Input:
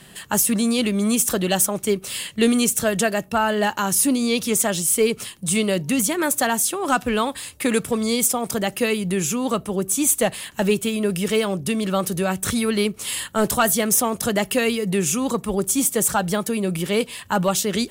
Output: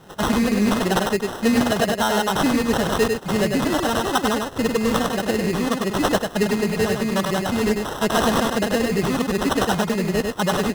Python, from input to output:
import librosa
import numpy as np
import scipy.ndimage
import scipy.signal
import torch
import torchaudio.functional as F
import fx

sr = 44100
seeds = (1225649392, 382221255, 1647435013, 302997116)

p1 = fx.stretch_vocoder(x, sr, factor=0.6)
p2 = fx.sample_hold(p1, sr, seeds[0], rate_hz=2300.0, jitter_pct=0)
p3 = p2 + fx.echo_single(p2, sr, ms=99, db=-4.0, dry=0)
y = fx.doppler_dist(p3, sr, depth_ms=0.12)